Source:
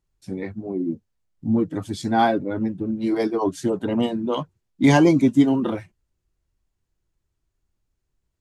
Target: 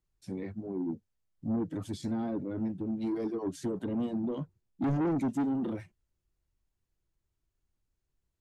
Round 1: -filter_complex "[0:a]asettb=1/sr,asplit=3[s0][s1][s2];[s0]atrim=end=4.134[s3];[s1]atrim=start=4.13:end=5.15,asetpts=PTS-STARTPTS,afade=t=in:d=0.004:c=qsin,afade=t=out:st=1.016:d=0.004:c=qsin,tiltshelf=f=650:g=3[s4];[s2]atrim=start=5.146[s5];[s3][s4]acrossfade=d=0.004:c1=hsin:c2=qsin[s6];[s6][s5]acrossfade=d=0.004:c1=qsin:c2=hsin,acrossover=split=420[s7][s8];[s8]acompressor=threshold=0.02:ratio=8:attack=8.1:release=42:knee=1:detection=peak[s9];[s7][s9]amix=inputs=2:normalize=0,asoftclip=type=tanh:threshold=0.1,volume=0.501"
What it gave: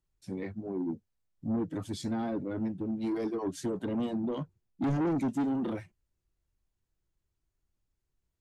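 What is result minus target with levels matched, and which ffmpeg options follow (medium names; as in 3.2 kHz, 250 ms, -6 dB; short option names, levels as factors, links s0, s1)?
compression: peak gain reduction -6 dB
-filter_complex "[0:a]asettb=1/sr,asplit=3[s0][s1][s2];[s0]atrim=end=4.134[s3];[s1]atrim=start=4.13:end=5.15,asetpts=PTS-STARTPTS,afade=t=in:d=0.004:c=qsin,afade=t=out:st=1.016:d=0.004:c=qsin,tiltshelf=f=650:g=3[s4];[s2]atrim=start=5.146[s5];[s3][s4]acrossfade=d=0.004:c1=hsin:c2=qsin[s6];[s6][s5]acrossfade=d=0.004:c1=qsin:c2=hsin,acrossover=split=420[s7][s8];[s8]acompressor=threshold=0.00891:ratio=8:attack=8.1:release=42:knee=1:detection=peak[s9];[s7][s9]amix=inputs=2:normalize=0,asoftclip=type=tanh:threshold=0.1,volume=0.501"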